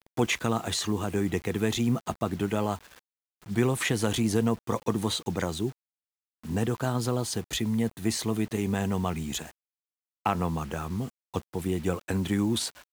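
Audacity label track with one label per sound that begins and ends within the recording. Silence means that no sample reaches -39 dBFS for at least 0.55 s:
3.470000	5.710000	sound
6.450000	9.500000	sound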